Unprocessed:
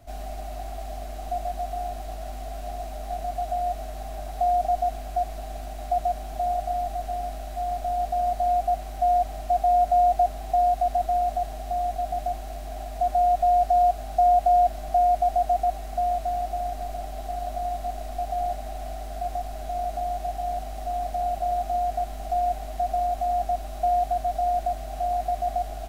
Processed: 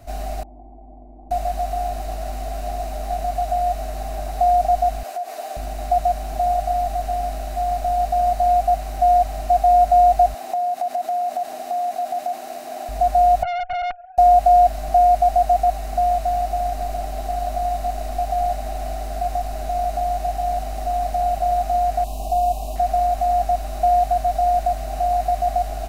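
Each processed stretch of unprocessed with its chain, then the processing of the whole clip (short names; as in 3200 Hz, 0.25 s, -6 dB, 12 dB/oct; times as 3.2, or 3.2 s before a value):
0.43–1.31 vocal tract filter u + Doppler distortion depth 0.1 ms
5.03–5.57 HPF 350 Hz 24 dB/oct + compressor 5:1, threshold -32 dBFS + doubler 13 ms -4.5 dB
10.34–12.89 HPF 240 Hz 24 dB/oct + compressor, threshold -26 dBFS
13.43–14.18 sine-wave speech + tube stage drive 28 dB, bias 0.7 + air absorption 210 m
22.04–22.76 elliptic band-stop 1100–2600 Hz + high shelf 6000 Hz +4 dB
whole clip: notch 3300 Hz, Q 11; dynamic EQ 360 Hz, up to -6 dB, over -40 dBFS, Q 1.6; gain +7 dB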